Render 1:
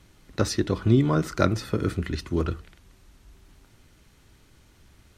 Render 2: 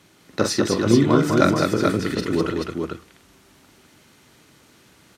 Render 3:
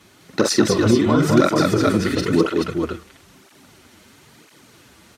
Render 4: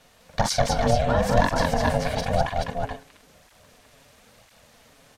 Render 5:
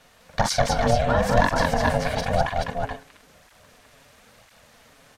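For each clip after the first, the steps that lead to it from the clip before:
HPF 180 Hz 12 dB/oct; on a send: tapped delay 43/204/433 ms -6.5/-4/-4.5 dB; on the sum: gain +4.5 dB
maximiser +8.5 dB; tape flanging out of phase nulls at 1 Hz, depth 7.8 ms; gain -1.5 dB
ring modulator 350 Hz; gain -2 dB
bell 1500 Hz +3.5 dB 1.4 oct

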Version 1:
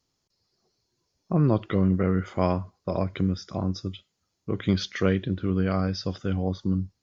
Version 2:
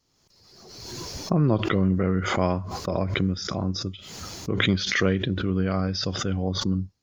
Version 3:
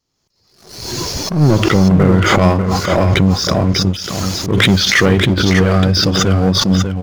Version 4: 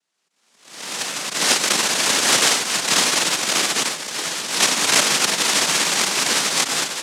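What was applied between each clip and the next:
backwards sustainer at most 40 dB/s
sample leveller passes 3; on a send: echo 0.593 s -7 dB; on the sum: attack slew limiter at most 110 dB/s; gain +3.5 dB
FFT order left unsorted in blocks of 256 samples; noise vocoder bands 1; frequency shift +55 Hz

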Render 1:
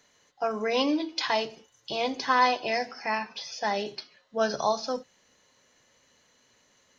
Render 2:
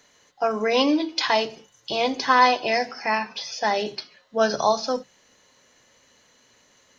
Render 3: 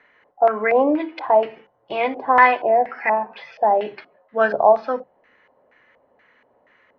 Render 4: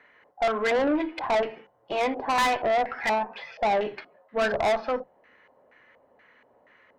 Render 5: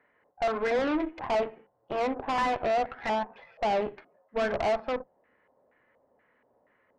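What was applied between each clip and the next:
notches 50/100/150/200 Hz; gain +5.5 dB
tone controls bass -7 dB, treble -14 dB; LFO low-pass square 2.1 Hz 730–2000 Hz; gain +1.5 dB
tube stage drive 20 dB, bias 0.3
tape spacing loss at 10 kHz 41 dB; added harmonics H 2 -9 dB, 4 -13 dB, 7 -25 dB, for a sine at -19 dBFS

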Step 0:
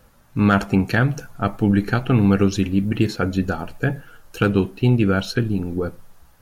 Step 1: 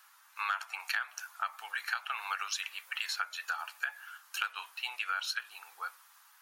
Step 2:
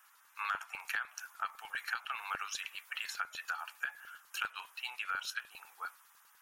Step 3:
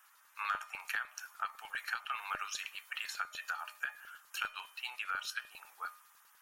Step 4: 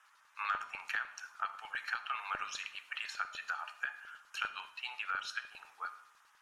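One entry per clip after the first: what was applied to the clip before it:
steep high-pass 970 Hz 36 dB/oct; compressor 5:1, threshold -31 dBFS, peak gain reduction 14 dB
LFO notch square 10 Hz 560–4300 Hz; gain -2.5 dB
resonator 610 Hz, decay 0.43 s, mix 70%; gain +9.5 dB
air absorption 73 m; reverb RT60 0.75 s, pre-delay 40 ms, DRR 13.5 dB; gain +1 dB

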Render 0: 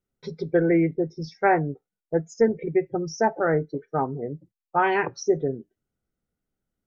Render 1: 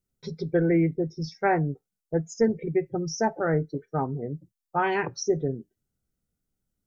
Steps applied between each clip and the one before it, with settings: tone controls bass +7 dB, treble +9 dB; gain -4 dB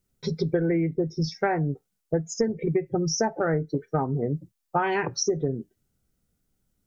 compressor 12:1, threshold -28 dBFS, peak gain reduction 12.5 dB; gain +7.5 dB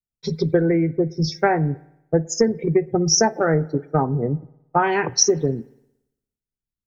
spring tank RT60 1.4 s, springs 57 ms, chirp 45 ms, DRR 19.5 dB; three-band expander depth 70%; gain +5.5 dB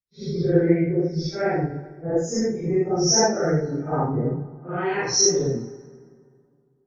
phase scrambler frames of 0.2 s; rotary speaker horn 0.9 Hz; plate-style reverb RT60 2.3 s, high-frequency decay 0.5×, DRR 14 dB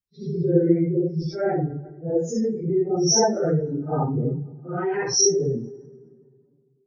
spectral contrast raised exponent 1.6

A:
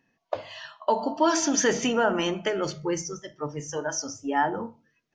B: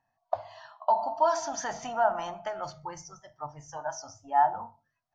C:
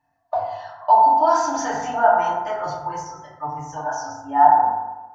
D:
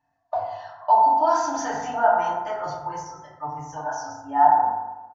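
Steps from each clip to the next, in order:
EQ curve 110 Hz 0 dB, 180 Hz -12 dB, 450 Hz -20 dB, 710 Hz +9 dB, 2700 Hz -14 dB, 4300 Hz -6 dB, 10000 Hz -12 dB; gain -3.5 dB
FDN reverb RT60 1.1 s, low-frequency decay 0.95×, high-frequency decay 0.35×, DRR -7.5 dB
downsampling 16000 Hz; gain -3 dB

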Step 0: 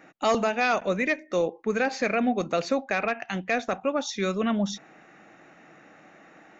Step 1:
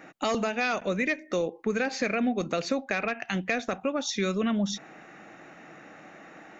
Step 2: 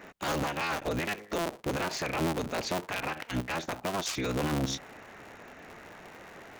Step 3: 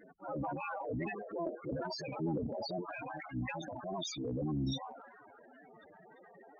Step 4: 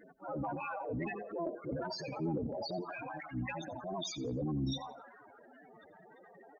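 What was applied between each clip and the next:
compressor 2:1, threshold -29 dBFS, peak gain reduction 6 dB; dynamic EQ 830 Hz, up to -5 dB, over -42 dBFS, Q 0.92; gain +4 dB
cycle switcher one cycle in 3, inverted; limiter -23 dBFS, peak gain reduction 10 dB
delay with a stepping band-pass 0.358 s, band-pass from 850 Hz, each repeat 0.7 oct, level -10 dB; loudest bins only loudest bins 8; transient shaper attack -4 dB, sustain +9 dB; gain -3 dB
feedback echo 87 ms, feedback 31%, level -18 dB

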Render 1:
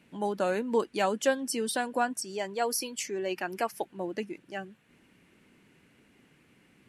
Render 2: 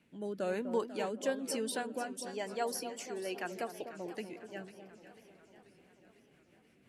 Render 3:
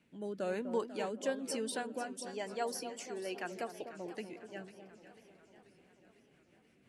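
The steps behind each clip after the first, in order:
rotary speaker horn 1.1 Hz, later 6 Hz, at 5.52; echo with dull and thin repeats by turns 0.249 s, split 1200 Hz, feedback 54%, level -9 dB; warbling echo 0.493 s, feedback 62%, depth 217 cents, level -15.5 dB; gain -5 dB
LPF 11000 Hz 24 dB/oct; gain -1.5 dB

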